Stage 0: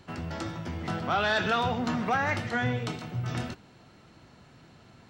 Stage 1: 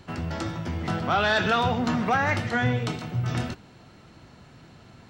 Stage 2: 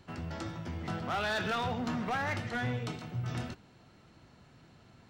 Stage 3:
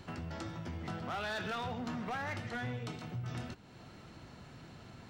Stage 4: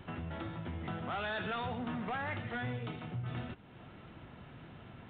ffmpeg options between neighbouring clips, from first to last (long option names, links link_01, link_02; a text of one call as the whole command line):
ffmpeg -i in.wav -af "lowshelf=frequency=120:gain=3.5,volume=3.5dB" out.wav
ffmpeg -i in.wav -af "asoftclip=type=hard:threshold=-19.5dB,volume=-8.5dB" out.wav
ffmpeg -i in.wav -af "acompressor=threshold=-53dB:ratio=2,volume=6.5dB" out.wav
ffmpeg -i in.wav -af "volume=1dB" -ar 8000 -c:a adpcm_g726 -b:a 40k out.wav